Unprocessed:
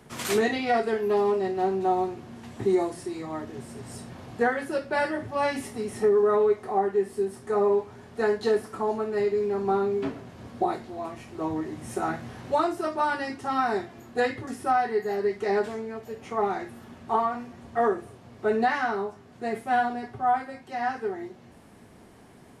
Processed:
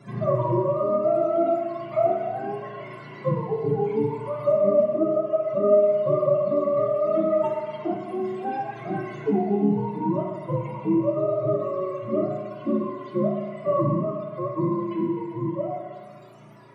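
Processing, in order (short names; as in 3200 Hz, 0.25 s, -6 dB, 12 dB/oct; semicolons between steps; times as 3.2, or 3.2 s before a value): spectrum mirrored in octaves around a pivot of 430 Hz; in parallel at +1 dB: compressor, threshold -37 dBFS, peak gain reduction 17 dB; on the sum: FDN reverb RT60 2.3 s, low-frequency decay 0.8×, high-frequency decay 0.55×, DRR 3 dB; harmonic-percussive split percussive -17 dB; on a send: delay with a stepping band-pass 0.172 s, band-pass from 920 Hz, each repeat 0.7 oct, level -7 dB; on the sum: speed mistake 33 rpm record played at 45 rpm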